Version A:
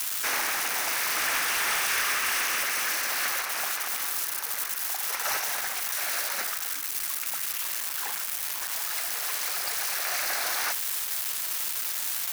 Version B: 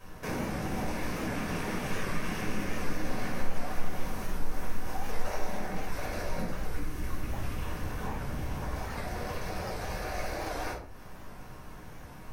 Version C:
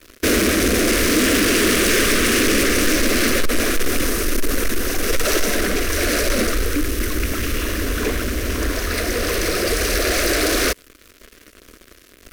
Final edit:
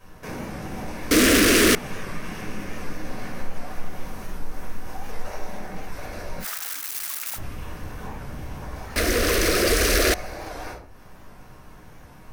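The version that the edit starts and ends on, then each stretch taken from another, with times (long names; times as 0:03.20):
B
0:01.11–0:01.75: punch in from C
0:06.43–0:07.37: punch in from A, crossfade 0.06 s
0:08.96–0:10.14: punch in from C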